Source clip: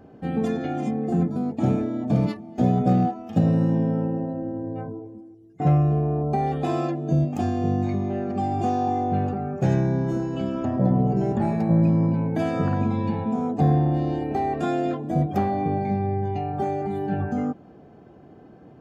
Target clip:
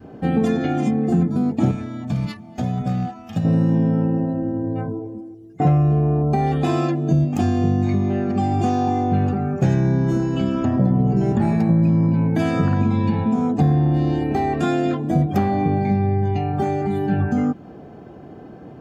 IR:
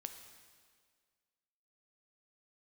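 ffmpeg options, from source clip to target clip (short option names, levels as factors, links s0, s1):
-filter_complex "[0:a]adynamicequalizer=threshold=0.0126:dfrequency=610:dqfactor=0.95:tfrequency=610:tqfactor=0.95:attack=5:release=100:ratio=0.375:range=3.5:mode=cutabove:tftype=bell,acompressor=threshold=0.0708:ratio=3,asettb=1/sr,asplit=3[s0][s1][s2];[s0]atrim=end=1.714[s3];[s1]atrim=start=1.71:end=3.45,asetpts=PTS-STARTPTS,afade=t=in:d=0.004:c=qsin,afade=t=out:st=1.736:d=0.004:c=qsin,equalizer=f=370:w=0.74:g=-13.5[s4];[s2]atrim=start=3.446[s5];[s3][s4]acrossfade=d=0.004:c1=hsin:c2=qsin[s6];[s6][s5]acrossfade=d=0.004:c1=qsin:c2=hsin,volume=2.66"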